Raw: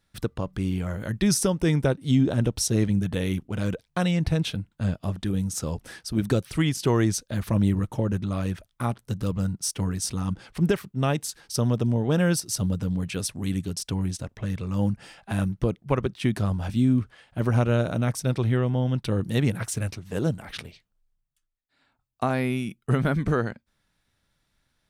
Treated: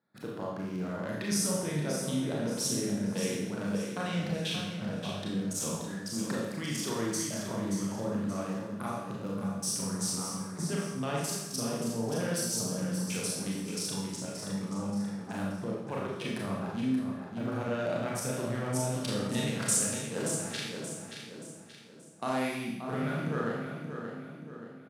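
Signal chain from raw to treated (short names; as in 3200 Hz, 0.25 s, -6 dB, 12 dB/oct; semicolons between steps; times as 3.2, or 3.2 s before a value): Wiener smoothing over 15 samples; limiter -20.5 dBFS, peak gain reduction 11 dB; feedback echo 0.578 s, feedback 40%, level -8 dB; dynamic EQ 280 Hz, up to -6 dB, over -41 dBFS, Q 1.1; HPF 160 Hz 24 dB/oct; 18.66–22.51 bell 7900 Hz +9.5 dB 2 oct; Schroeder reverb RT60 0.89 s, combs from 27 ms, DRR -4 dB; gain -4 dB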